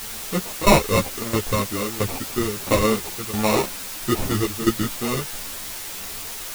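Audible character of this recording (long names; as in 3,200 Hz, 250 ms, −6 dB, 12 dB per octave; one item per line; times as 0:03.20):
aliases and images of a low sample rate 1,600 Hz, jitter 0%
tremolo saw down 1.5 Hz, depth 85%
a quantiser's noise floor 6 bits, dither triangular
a shimmering, thickened sound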